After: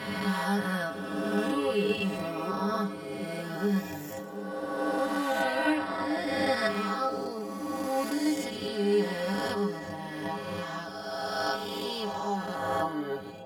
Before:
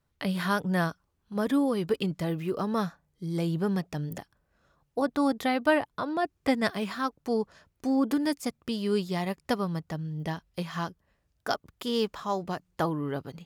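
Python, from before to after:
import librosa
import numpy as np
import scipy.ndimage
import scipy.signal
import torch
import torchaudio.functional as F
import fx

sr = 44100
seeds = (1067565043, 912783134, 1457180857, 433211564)

y = fx.spec_swells(x, sr, rise_s=2.61)
y = fx.stiff_resonator(y, sr, f0_hz=97.0, decay_s=0.32, stiffness=0.008)
y = fx.echo_split(y, sr, split_hz=740.0, low_ms=715, high_ms=116, feedback_pct=52, wet_db=-13.5)
y = y * librosa.db_to_amplitude(4.5)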